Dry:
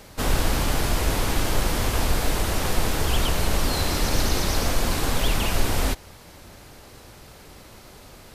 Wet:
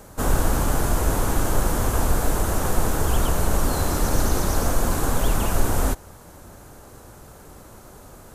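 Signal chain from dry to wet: high-order bell 3.2 kHz -10 dB; trim +2 dB

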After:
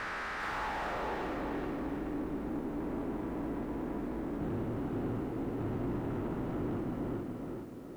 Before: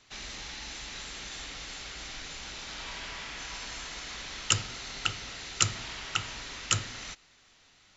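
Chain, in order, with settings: spectrogram pixelated in time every 400 ms; low-pass sweep 1.5 kHz -> 300 Hz, 0.42–1.37 s; on a send: thinning echo 374 ms, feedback 46%, high-pass 150 Hz, level -10.5 dB; on the sum: overdrive pedal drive 28 dB, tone 1.4 kHz, clips at -32.5 dBFS; bit-crushed delay 426 ms, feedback 35%, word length 11-bit, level -3.5 dB; trim +3.5 dB

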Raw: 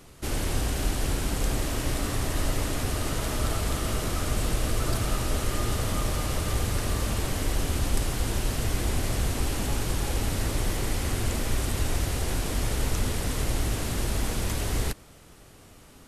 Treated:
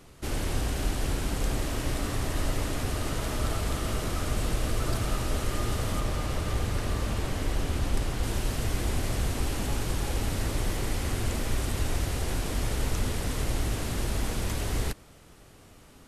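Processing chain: treble shelf 5.8 kHz -4 dB, from 6.00 s -9 dB, from 8.23 s -3 dB; trim -1.5 dB

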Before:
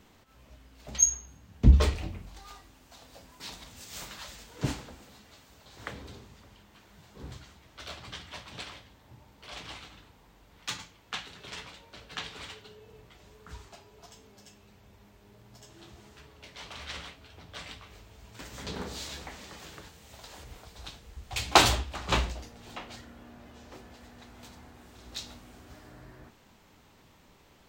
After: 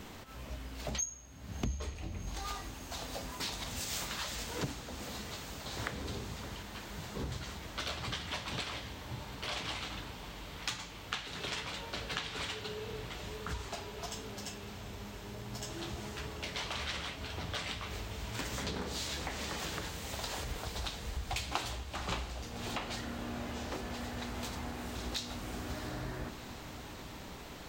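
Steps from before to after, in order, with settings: compression 10:1, threshold -46 dBFS, peak gain reduction 33 dB; echo that smears into a reverb 721 ms, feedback 78%, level -14 dB; trim +11 dB

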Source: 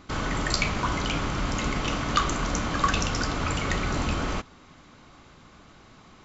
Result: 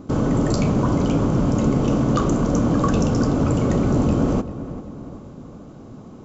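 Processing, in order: ten-band graphic EQ 125 Hz +10 dB, 250 Hz +10 dB, 500 Hz +9 dB, 2 kHz -11 dB, 4 kHz -8 dB; in parallel at -1 dB: peak limiter -17.5 dBFS, peak gain reduction 9.5 dB; on the sum: filtered feedback delay 388 ms, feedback 50%, low-pass 2.2 kHz, level -13 dB; trim -2.5 dB

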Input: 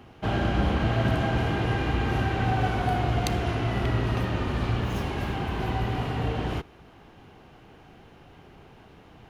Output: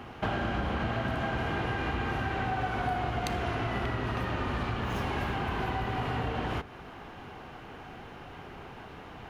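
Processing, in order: peaking EQ 1.3 kHz +6.5 dB 2.2 oct; compression 5:1, threshold -32 dBFS, peak gain reduction 13 dB; on a send: reverberation RT60 0.85 s, pre-delay 4 ms, DRR 16.5 dB; on the sum: trim +3 dB

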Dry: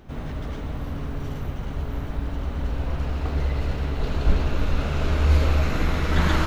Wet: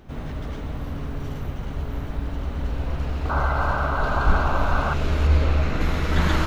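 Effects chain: 3.29–4.94 s: painted sound noise 540–1600 Hz -26 dBFS; 5.27–5.81 s: treble shelf 6.5 kHz -11 dB

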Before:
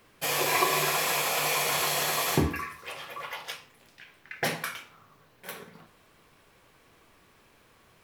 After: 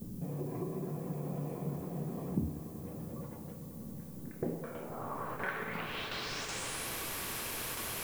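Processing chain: gate with hold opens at -50 dBFS; treble shelf 4.1 kHz +9.5 dB; hum notches 50/100/150 Hz; in parallel at +1 dB: upward compressor, threshold -26 dBFS; on the sum: low-pass sweep 200 Hz -> 13 kHz, 4.12–6.94 s; compression 3:1, threshold -38 dBFS, peak gain reduction 18.5 dB; on a send: echo with a slow build-up 95 ms, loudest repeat 5, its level -16 dB; on the sum: added noise violet -58 dBFS; trim +1 dB

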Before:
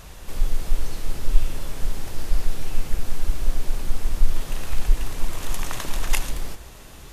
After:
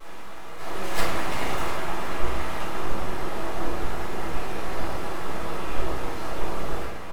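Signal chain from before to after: reverse the whole clip; high-pass 270 Hz 6 dB/octave; treble shelf 2.1 kHz -10 dB; echo from a far wall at 120 m, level -11 dB; full-wave rectifier; peaking EQ 1 kHz +10 dB 2.8 oct; simulated room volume 180 m³, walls mixed, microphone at 3.9 m; vibrato 0.31 Hz 9.3 cents; trim -6.5 dB

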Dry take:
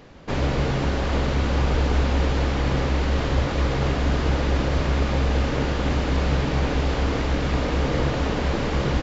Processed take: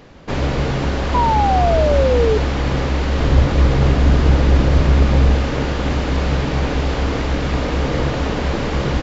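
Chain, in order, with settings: 1.14–2.38 s: painted sound fall 420–1000 Hz -20 dBFS; 3.20–5.35 s: bass shelf 290 Hz +6.5 dB; trim +3.5 dB

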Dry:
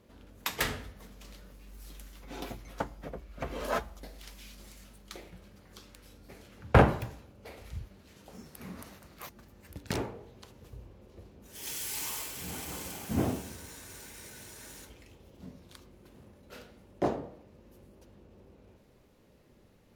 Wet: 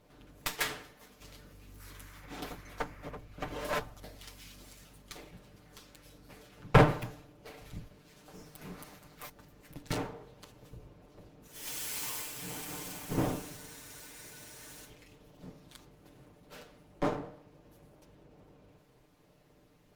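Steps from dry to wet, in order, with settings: comb filter that takes the minimum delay 6.7 ms; 0.55–1.21 s: bass shelf 270 Hz -11 dB; 1.79–3.16 s: band noise 940–2300 Hz -59 dBFS

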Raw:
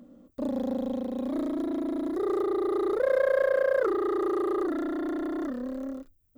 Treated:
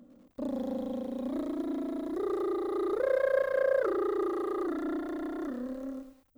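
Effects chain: bit-crushed delay 102 ms, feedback 35%, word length 9-bit, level -10.5 dB; trim -4 dB

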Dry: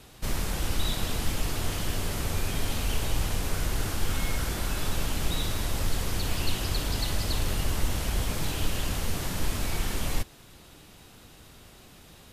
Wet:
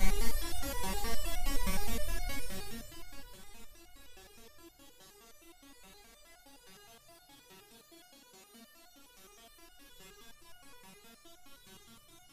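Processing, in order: Paulstretch 44×, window 0.05 s, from 10.17 s; echo whose repeats swap between lows and highs 231 ms, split 1.2 kHz, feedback 75%, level -12.5 dB; resonator arpeggio 9.6 Hz 190–720 Hz; trim +10 dB

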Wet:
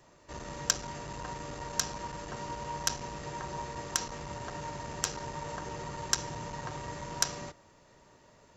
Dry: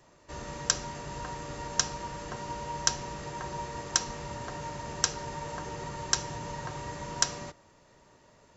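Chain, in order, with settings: transformer saturation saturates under 3.7 kHz

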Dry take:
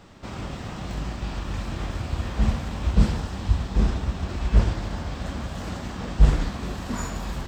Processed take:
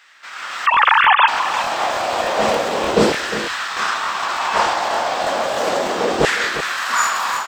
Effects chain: 0.66–1.28 s: formants replaced by sine waves; LFO high-pass saw down 0.32 Hz 400–1800 Hz; level rider gain up to 11.5 dB; on a send: delay 355 ms -11.5 dB; on the sum: crackling interface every 0.30 s, samples 1024, repeat, from 0.72 s; trim +3.5 dB

